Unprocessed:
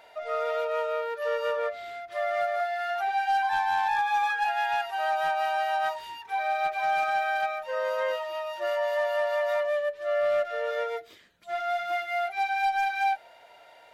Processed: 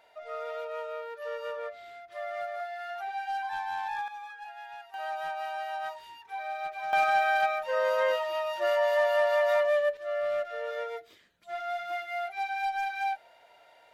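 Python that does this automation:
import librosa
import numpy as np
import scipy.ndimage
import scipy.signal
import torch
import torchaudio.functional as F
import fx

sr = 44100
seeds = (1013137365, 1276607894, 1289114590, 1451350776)

y = fx.gain(x, sr, db=fx.steps((0.0, -8.0), (4.08, -17.0), (4.94, -8.0), (6.93, 2.0), (9.97, -5.0)))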